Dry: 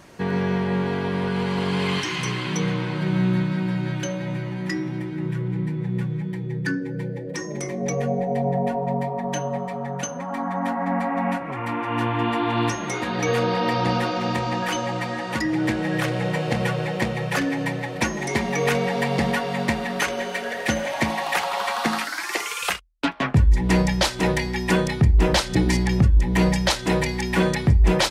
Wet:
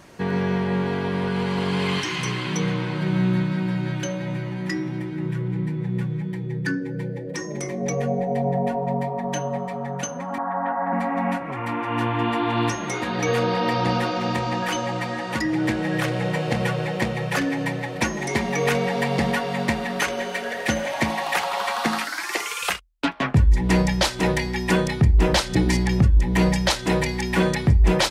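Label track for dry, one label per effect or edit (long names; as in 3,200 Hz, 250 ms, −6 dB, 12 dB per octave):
10.380000	10.930000	loudspeaker in its box 200–2,400 Hz, peaks and dips at 230 Hz −9 dB, 360 Hz −6 dB, 660 Hz +3 dB, 930 Hz +3 dB, 1,500 Hz +4 dB, 2,300 Hz −8 dB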